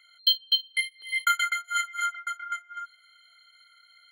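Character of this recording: noise floor -60 dBFS; spectral tilt -6.5 dB/octave

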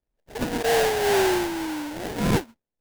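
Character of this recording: phasing stages 6, 1.8 Hz, lowest notch 780–2900 Hz; aliases and images of a low sample rate 1.2 kHz, jitter 20%

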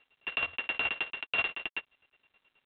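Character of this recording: a buzz of ramps at a fixed pitch in blocks of 16 samples; chopped level 9.4 Hz, depth 65%, duty 35%; G.726

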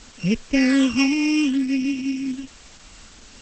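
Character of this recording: a buzz of ramps at a fixed pitch in blocks of 16 samples; phasing stages 8, 0.64 Hz, lowest notch 450–1300 Hz; a quantiser's noise floor 8-bit, dither triangular; Opus

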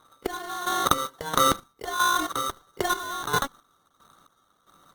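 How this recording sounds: chopped level 1.5 Hz, depth 65%, duty 40%; aliases and images of a low sample rate 2.5 kHz, jitter 0%; Opus

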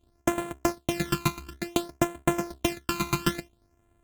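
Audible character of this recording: a buzz of ramps at a fixed pitch in blocks of 128 samples; phasing stages 12, 0.57 Hz, lowest notch 550–5000 Hz; AAC

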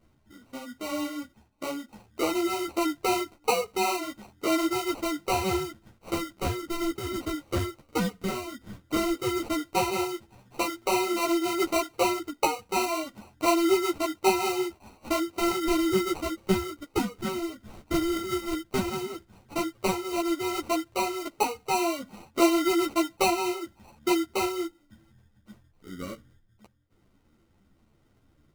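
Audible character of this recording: phasing stages 6, 0.1 Hz, lowest notch 770–2100 Hz; aliases and images of a low sample rate 1.7 kHz, jitter 0%; a shimmering, thickened sound

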